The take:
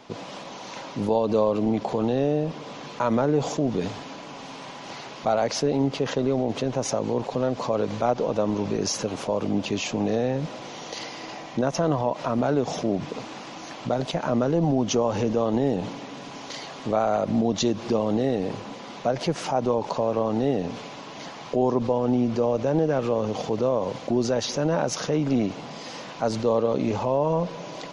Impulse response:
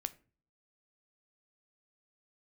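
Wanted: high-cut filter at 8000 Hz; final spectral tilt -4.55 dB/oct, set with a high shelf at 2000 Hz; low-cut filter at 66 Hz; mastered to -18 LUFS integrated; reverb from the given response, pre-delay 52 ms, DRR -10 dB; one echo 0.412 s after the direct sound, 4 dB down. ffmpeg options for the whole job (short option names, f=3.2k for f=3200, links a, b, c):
-filter_complex "[0:a]highpass=66,lowpass=8k,highshelf=f=2k:g=8,aecho=1:1:412:0.631,asplit=2[a][b];[1:a]atrim=start_sample=2205,adelay=52[c];[b][c]afir=irnorm=-1:irlink=0,volume=11dB[d];[a][d]amix=inputs=2:normalize=0,volume=-5dB"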